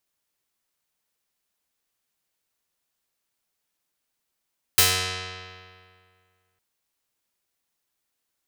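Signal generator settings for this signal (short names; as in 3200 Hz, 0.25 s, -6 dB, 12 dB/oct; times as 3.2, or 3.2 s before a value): plucked string F#2, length 1.81 s, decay 2.10 s, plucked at 0.34, medium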